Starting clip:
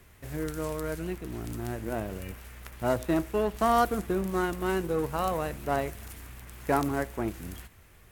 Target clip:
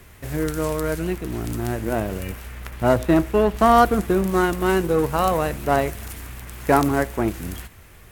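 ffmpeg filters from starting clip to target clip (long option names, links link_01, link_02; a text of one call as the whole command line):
ffmpeg -i in.wav -filter_complex "[0:a]asettb=1/sr,asplit=3[link_01][link_02][link_03];[link_01]atrim=end=2.454[link_04];[link_02]atrim=start=2.45:end=4.01,asetpts=PTS-STARTPTS,afade=type=in:duration=0.004:curve=qsin,afade=type=out:start_time=1.556:duration=0.004:curve=qsin,bass=frequency=250:gain=2,treble=frequency=4000:gain=-4[link_05];[link_03]atrim=start=4.006[link_06];[link_04][link_05]acrossfade=duration=0.004:curve1=hsin:curve2=qsin[link_07];[link_07][link_06]acrossfade=duration=0.004:curve1=qsin:curve2=hsin,volume=9dB" out.wav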